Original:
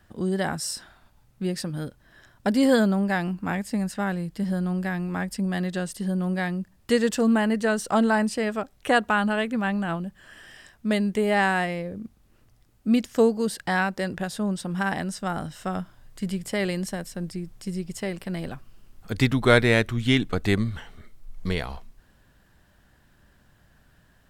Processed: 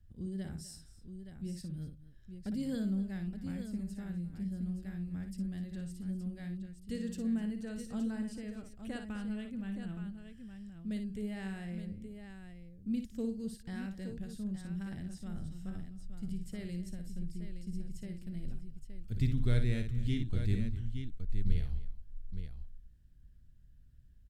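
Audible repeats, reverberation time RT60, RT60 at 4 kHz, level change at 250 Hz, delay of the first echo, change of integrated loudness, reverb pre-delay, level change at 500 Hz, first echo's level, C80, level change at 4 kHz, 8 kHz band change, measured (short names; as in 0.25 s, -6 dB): 3, none, none, -12.0 dB, 57 ms, -14.0 dB, none, -22.0 dB, -7.5 dB, none, -20.0 dB, -18.5 dB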